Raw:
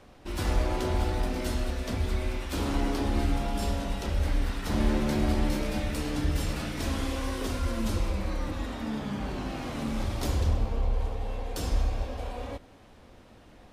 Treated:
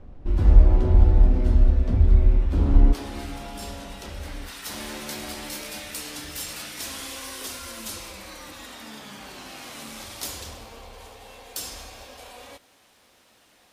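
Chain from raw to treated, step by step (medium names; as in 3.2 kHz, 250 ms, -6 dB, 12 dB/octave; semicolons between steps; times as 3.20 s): tilt EQ -4 dB/octave, from 2.92 s +1.5 dB/octave, from 4.47 s +4 dB/octave; trim -3.5 dB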